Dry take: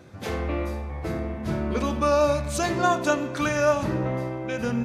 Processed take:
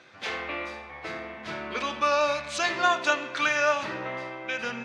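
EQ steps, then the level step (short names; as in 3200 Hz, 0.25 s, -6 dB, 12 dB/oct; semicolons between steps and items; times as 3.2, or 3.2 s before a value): band-pass 2800 Hz, Q 0.9; air absorption 55 m; +7.5 dB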